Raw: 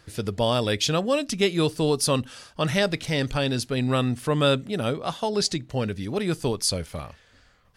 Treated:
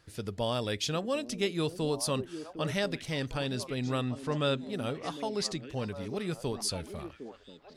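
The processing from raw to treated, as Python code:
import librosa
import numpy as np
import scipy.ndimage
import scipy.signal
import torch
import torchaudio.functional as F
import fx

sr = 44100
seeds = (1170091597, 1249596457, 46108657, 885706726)

p1 = fx.lowpass(x, sr, hz=7800.0, slope=12, at=(4.01, 4.69))
p2 = p1 + fx.echo_stepped(p1, sr, ms=756, hz=300.0, octaves=1.4, feedback_pct=70, wet_db=-7, dry=0)
y = p2 * librosa.db_to_amplitude(-8.5)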